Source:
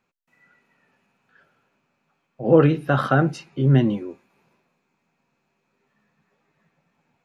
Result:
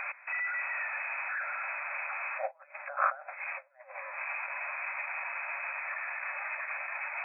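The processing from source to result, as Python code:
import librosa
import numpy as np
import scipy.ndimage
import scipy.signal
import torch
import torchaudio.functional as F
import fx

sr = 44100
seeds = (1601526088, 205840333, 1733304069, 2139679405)

y = x + 0.5 * 10.0 ** (-17.5 / 20.0) * np.diff(np.sign(x), prepend=np.sign(x[:1]))
y = fx.over_compress(y, sr, threshold_db=-25.0, ratio=-0.5)
y = fx.brickwall_bandpass(y, sr, low_hz=540.0, high_hz=2600.0)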